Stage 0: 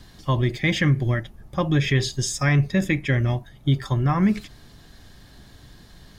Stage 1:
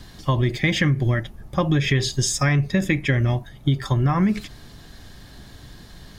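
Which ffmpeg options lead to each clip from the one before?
-af "acompressor=threshold=0.1:ratio=6,volume=1.68"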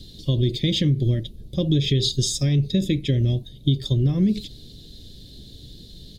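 -af "firequalizer=gain_entry='entry(470,0);entry(840,-24);entry(1400,-26);entry(3700,8);entry(5500,-3)':delay=0.05:min_phase=1"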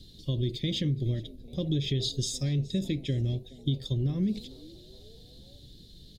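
-filter_complex "[0:a]asplit=4[s0][s1][s2][s3];[s1]adelay=420,afreqshift=120,volume=0.0708[s4];[s2]adelay=840,afreqshift=240,volume=0.0327[s5];[s3]adelay=1260,afreqshift=360,volume=0.015[s6];[s0][s4][s5][s6]amix=inputs=4:normalize=0,volume=0.376"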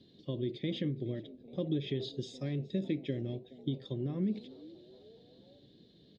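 -af "highpass=230,lowpass=2000"

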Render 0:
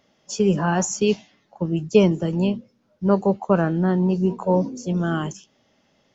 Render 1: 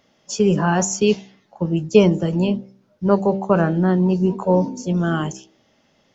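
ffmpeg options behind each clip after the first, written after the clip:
-af "bandreject=f=64.61:t=h:w=4,bandreject=f=129.22:t=h:w=4,bandreject=f=193.83:t=h:w=4,bandreject=f=258.44:t=h:w=4,bandreject=f=323.05:t=h:w=4,bandreject=f=387.66:t=h:w=4,bandreject=f=452.27:t=h:w=4,bandreject=f=516.88:t=h:w=4,bandreject=f=581.49:t=h:w=4,bandreject=f=646.1:t=h:w=4,bandreject=f=710.71:t=h:w=4,bandreject=f=775.32:t=h:w=4,bandreject=f=839.93:t=h:w=4,bandreject=f=904.54:t=h:w=4,volume=1.41"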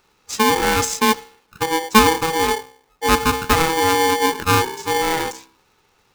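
-af "acrusher=bits=5:mode=log:mix=0:aa=0.000001,aeval=exprs='val(0)*sgn(sin(2*PI*650*n/s))':c=same"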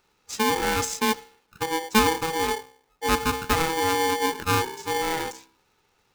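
-af "bandreject=f=1100:w=17,volume=0.473"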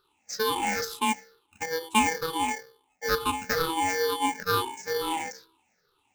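-af "afftfilt=real='re*pow(10,20/40*sin(2*PI*(0.61*log(max(b,1)*sr/1024/100)/log(2)-(-2.2)*(pts-256)/sr)))':imag='im*pow(10,20/40*sin(2*PI*(0.61*log(max(b,1)*sr/1024/100)/log(2)-(-2.2)*(pts-256)/sr)))':win_size=1024:overlap=0.75,lowshelf=f=130:g=-7.5,volume=0.422"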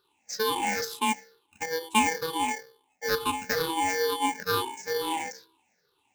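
-af "highpass=f=110:p=1,bandreject=f=1300:w=5.7"

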